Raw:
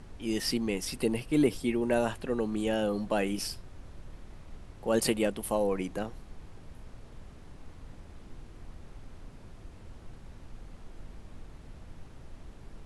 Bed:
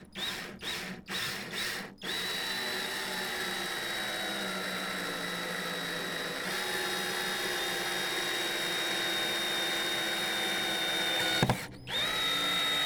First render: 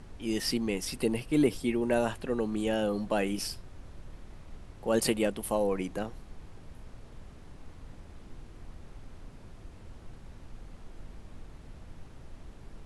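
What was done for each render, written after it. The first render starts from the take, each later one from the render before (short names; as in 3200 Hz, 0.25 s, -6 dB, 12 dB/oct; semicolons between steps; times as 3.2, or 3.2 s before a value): nothing audible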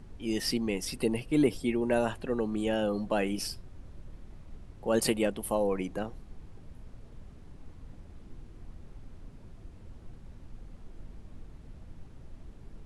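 denoiser 6 dB, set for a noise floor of -50 dBFS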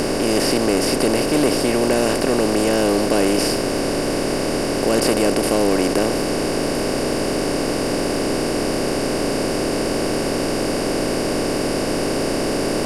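per-bin compression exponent 0.2; sample leveller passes 1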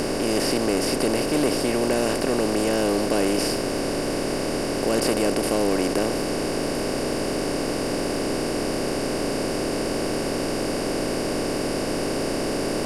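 gain -4.5 dB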